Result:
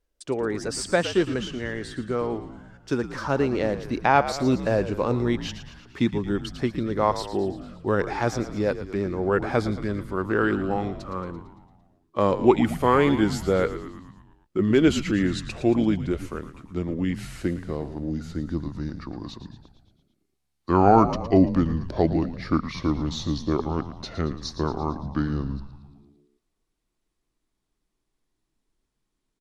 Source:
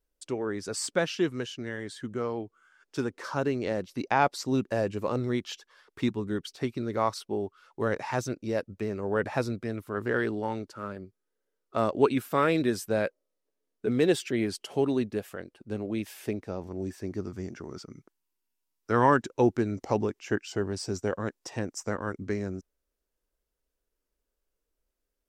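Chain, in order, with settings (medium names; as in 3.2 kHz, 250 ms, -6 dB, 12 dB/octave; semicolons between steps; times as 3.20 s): gliding tape speed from 104% -> 68%; treble shelf 8.7 kHz -9 dB; frequency-shifting echo 113 ms, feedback 61%, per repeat -71 Hz, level -12 dB; trim +5 dB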